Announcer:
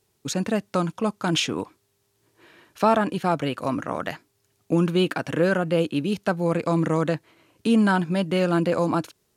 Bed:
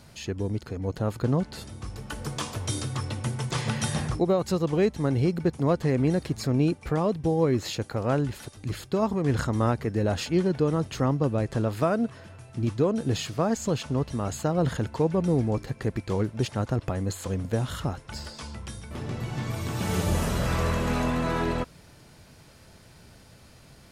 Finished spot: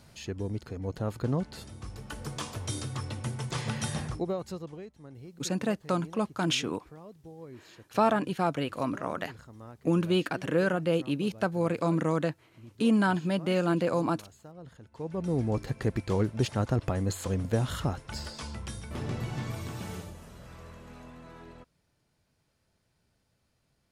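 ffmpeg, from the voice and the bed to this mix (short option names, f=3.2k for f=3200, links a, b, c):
-filter_complex "[0:a]adelay=5150,volume=-5dB[a];[1:a]volume=18dB,afade=t=out:st=3.89:d=0.96:silence=0.11885,afade=t=in:st=14.9:d=0.79:silence=0.0749894,afade=t=out:st=19.08:d=1.06:silence=0.0841395[b];[a][b]amix=inputs=2:normalize=0"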